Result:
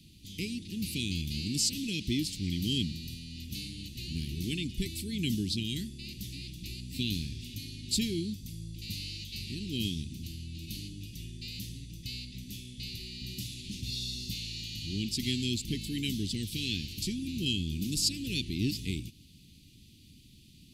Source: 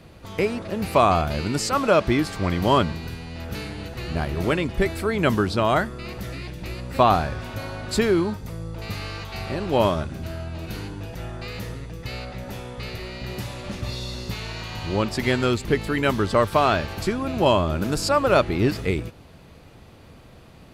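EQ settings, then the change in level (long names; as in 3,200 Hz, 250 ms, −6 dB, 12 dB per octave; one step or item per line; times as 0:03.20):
inverse Chebyshev band-stop filter 600–1,400 Hz, stop band 60 dB
low-shelf EQ 300 Hz −10 dB
0.0 dB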